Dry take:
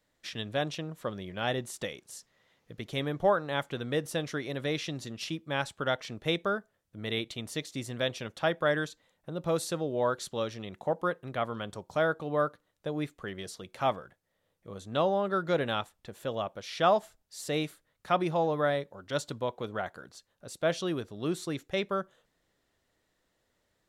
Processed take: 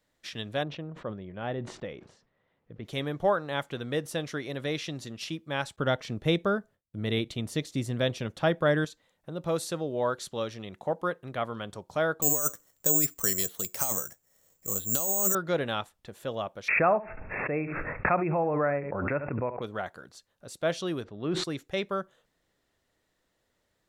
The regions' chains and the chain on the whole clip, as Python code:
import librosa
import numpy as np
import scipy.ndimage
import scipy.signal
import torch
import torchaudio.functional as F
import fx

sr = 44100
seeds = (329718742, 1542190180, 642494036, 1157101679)

y = fx.chain(x, sr, fx.spacing_loss(db_at_10k=39),
    fx.sustainer(db_per_s=94.0), at=(0.63, 2.85))
y = fx.chain(y, sr, fx.gate_hold(open_db=-57.0, close_db=-61.0, hold_ms=71.0, range_db=-21, attack_ms=1.4, release_ms=100.0),
    fx.low_shelf(hz=390.0, db=9.0), at=(5.76, 8.85))
y = fx.chain(y, sr, fx.over_compress(threshold_db=-33.0, ratio=-1.0),
    fx.resample_bad(factor=6, down='filtered', up='zero_stuff'), at=(12.22, 15.35))
y = fx.chain(y, sr, fx.brickwall_lowpass(high_hz=2700.0),
    fx.echo_single(ms=70, db=-17.0),
    fx.pre_swell(db_per_s=29.0), at=(16.68, 19.62))
y = fx.chain(y, sr, fx.lowpass(hz=2600.0, slope=12),
    fx.sustainer(db_per_s=36.0), at=(21.04, 21.44))